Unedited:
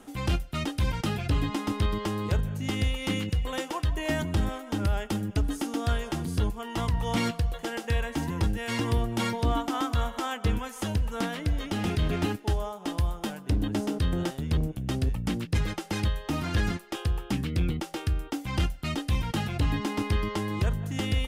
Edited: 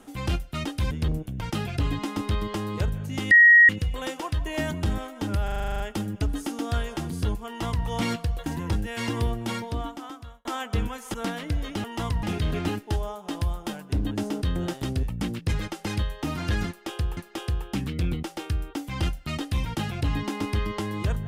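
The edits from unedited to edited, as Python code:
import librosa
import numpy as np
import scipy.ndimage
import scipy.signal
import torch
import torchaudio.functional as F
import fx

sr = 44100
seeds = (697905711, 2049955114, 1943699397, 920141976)

y = fx.edit(x, sr, fx.bleep(start_s=2.82, length_s=0.38, hz=1890.0, db=-10.0),
    fx.stutter(start_s=4.95, slice_s=0.04, count=10),
    fx.duplicate(start_s=6.62, length_s=0.39, to_s=11.8),
    fx.cut(start_s=7.61, length_s=0.56),
    fx.fade_out_span(start_s=8.96, length_s=1.2),
    fx.cut(start_s=10.85, length_s=0.25),
    fx.move(start_s=14.4, length_s=0.49, to_s=0.91),
    fx.repeat(start_s=16.74, length_s=0.49, count=2), tone=tone)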